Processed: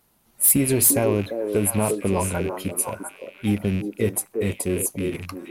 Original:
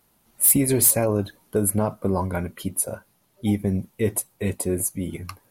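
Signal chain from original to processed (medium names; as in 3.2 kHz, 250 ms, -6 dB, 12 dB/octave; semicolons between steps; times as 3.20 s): rattle on loud lows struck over -33 dBFS, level -26 dBFS; repeats whose band climbs or falls 347 ms, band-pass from 400 Hz, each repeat 1.4 oct, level -2 dB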